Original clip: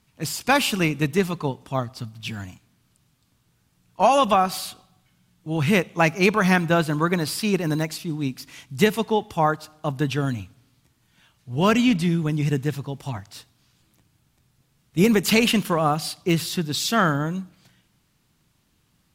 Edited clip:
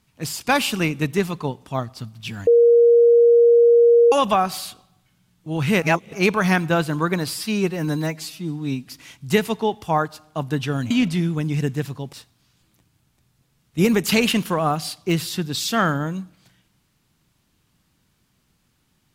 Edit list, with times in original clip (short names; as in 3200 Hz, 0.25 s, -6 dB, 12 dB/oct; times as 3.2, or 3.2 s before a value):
2.47–4.12 bleep 471 Hz -9.5 dBFS
5.82–6.13 reverse
7.34–8.37 stretch 1.5×
10.39–11.79 cut
13.02–13.33 cut